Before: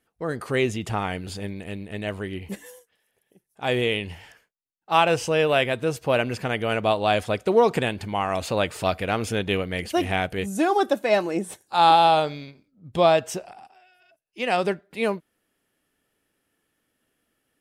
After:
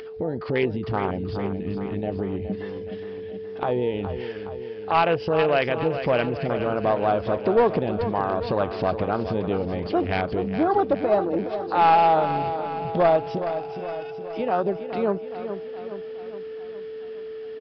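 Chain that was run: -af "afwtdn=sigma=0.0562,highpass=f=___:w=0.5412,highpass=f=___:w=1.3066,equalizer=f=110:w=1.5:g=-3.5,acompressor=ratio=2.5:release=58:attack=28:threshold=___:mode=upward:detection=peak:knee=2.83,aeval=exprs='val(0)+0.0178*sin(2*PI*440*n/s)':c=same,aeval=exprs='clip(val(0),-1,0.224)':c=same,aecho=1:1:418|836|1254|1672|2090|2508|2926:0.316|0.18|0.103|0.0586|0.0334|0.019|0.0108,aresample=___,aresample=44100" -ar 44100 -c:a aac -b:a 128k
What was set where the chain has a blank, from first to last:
48, 48, -26dB, 11025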